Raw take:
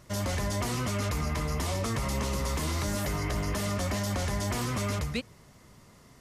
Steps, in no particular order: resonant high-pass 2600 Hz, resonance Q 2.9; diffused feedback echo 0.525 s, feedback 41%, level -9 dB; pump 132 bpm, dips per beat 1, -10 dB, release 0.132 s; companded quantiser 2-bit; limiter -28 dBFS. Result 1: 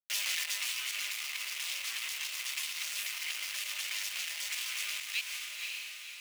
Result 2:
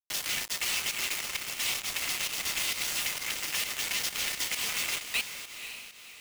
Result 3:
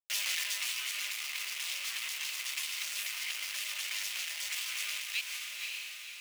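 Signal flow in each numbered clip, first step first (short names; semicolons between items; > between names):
companded quantiser > pump > diffused feedback echo > limiter > resonant high-pass; limiter > resonant high-pass > companded quantiser > diffused feedback echo > pump; pump > companded quantiser > diffused feedback echo > limiter > resonant high-pass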